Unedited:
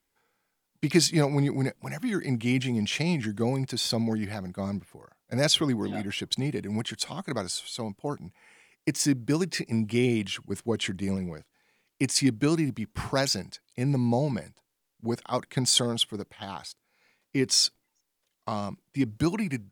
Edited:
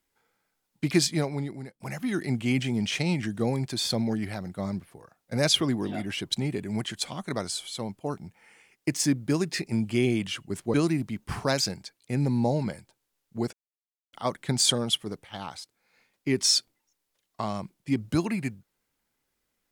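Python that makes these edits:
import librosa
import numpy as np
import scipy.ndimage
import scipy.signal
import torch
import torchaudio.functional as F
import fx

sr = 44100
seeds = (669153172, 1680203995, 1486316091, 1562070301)

y = fx.edit(x, sr, fx.fade_out_to(start_s=0.84, length_s=0.96, floor_db=-23.0),
    fx.cut(start_s=10.74, length_s=1.68),
    fx.insert_silence(at_s=15.21, length_s=0.6), tone=tone)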